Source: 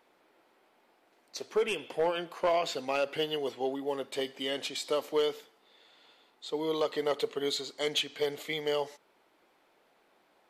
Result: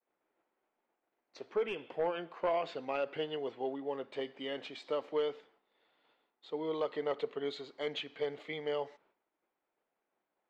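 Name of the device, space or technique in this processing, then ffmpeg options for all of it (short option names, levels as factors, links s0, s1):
hearing-loss simulation: -af "lowpass=2500,agate=range=0.0224:threshold=0.00126:ratio=3:detection=peak,volume=0.596"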